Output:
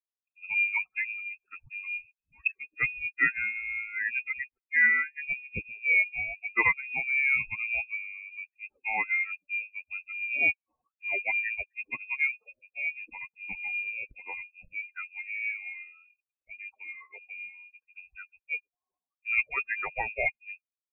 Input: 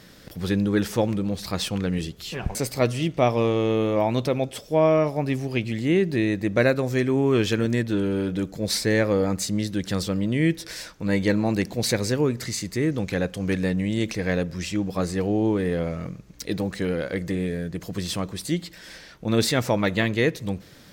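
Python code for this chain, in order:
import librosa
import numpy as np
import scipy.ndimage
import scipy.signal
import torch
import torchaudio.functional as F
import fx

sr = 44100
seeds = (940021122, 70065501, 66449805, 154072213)

y = fx.bin_expand(x, sr, power=3.0)
y = fx.freq_invert(y, sr, carrier_hz=2600)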